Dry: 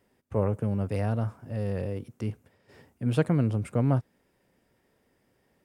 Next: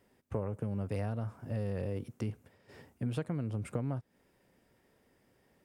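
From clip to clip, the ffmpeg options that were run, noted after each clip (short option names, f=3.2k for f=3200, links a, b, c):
-af "acompressor=threshold=-31dB:ratio=10"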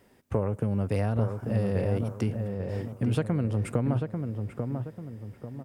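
-filter_complex "[0:a]asplit=2[a][b];[b]adelay=842,lowpass=f=1.4k:p=1,volume=-5dB,asplit=2[c][d];[d]adelay=842,lowpass=f=1.4k:p=1,volume=0.41,asplit=2[e][f];[f]adelay=842,lowpass=f=1.4k:p=1,volume=0.41,asplit=2[g][h];[h]adelay=842,lowpass=f=1.4k:p=1,volume=0.41,asplit=2[i][j];[j]adelay=842,lowpass=f=1.4k:p=1,volume=0.41[k];[a][c][e][g][i][k]amix=inputs=6:normalize=0,volume=8dB"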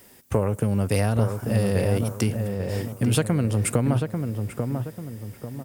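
-af "crystalizer=i=4:c=0,volume=4.5dB"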